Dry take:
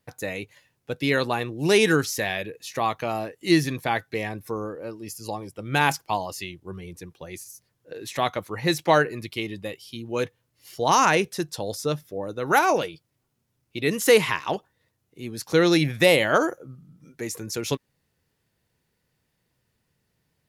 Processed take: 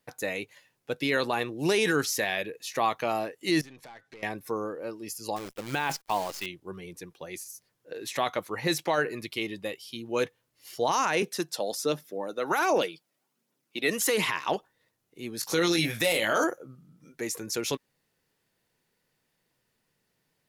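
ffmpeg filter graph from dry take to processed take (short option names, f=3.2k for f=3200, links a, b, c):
-filter_complex "[0:a]asettb=1/sr,asplit=3[a][b][c];[a]atrim=end=3.614[d];[b]atrim=start=3.61:end=4.23,asetpts=PTS-STARTPTS,afade=t=in:d=0.004:c=qsin,afade=t=out:st=0.616:d=0.004:c=qsin,lowpass=8.1k,acompressor=threshold=-38dB:ratio=16:attack=3.2:release=140:knee=1:detection=peak,aeval=exprs='(tanh(100*val(0)+0.35)-tanh(0.35))/100':c=same[e];[c]atrim=start=4.226[f];[d][e]acrossfade=d=0.004:c1=hsin:c2=qsin[g];[g][f]acrossfade=d=0.004:c1=qsin:c2=hsin,asettb=1/sr,asplit=3[h][i][j];[h]atrim=end=5.364[k];[i]atrim=start=5.36:end=6.46,asetpts=PTS-STARTPTS,afade=t=in:d=0.004:c=qsin,afade=t=out:st=1.096:d=0.004:c=qsin,equalizer=f=10k:w=1.3:g=-10,acrusher=bits=7:dc=4:mix=0:aa=0.000001[l];[j]atrim=start=6.456[m];[k][l]acrossfade=d=0.004:c1=hsin:c2=qsin[n];[n][m]acrossfade=d=0.004:c1=qsin:c2=hsin,asettb=1/sr,asplit=3[o][p][q];[o]atrim=end=11.224[r];[p]atrim=start=11.22:end=14.26,asetpts=PTS-STARTPTS,afade=t=in:d=0.004:c=qsin,afade=t=out:st=3.036:d=0.004:c=qsin,highpass=f=180:w=0.5412,highpass=f=180:w=1.3066,aphaser=in_gain=1:out_gain=1:delay=1.7:decay=0.37:speed=1.3:type=triangular[s];[q]atrim=start=14.256[t];[r][s]acrossfade=d=0.004:c1=hsin:c2=qsin[u];[u][t]acrossfade=d=0.004:c1=qsin:c2=hsin,asettb=1/sr,asplit=3[v][w][x];[v]atrim=end=15.414[y];[w]atrim=start=15.41:end=16.44,asetpts=PTS-STARTPTS,afade=t=in:d=0.004:c=qsin,afade=t=out:st=1.026:d=0.004:c=qsin,highshelf=f=4.1k:g=10,asoftclip=type=hard:threshold=-6.5dB,asplit=2[z][aa];[aa]adelay=18,volume=-5dB[ab];[z][ab]amix=inputs=2:normalize=0,atrim=end_sample=45423[ac];[x]atrim=start=16.436[ad];[y][ac]acrossfade=d=0.004:c1=hsin:c2=qsin[ae];[ae][ad]acrossfade=d=0.004:c1=qsin:c2=hsin,equalizer=f=67:t=o:w=2:g=-14.5,alimiter=limit=-15.5dB:level=0:latency=1:release=21"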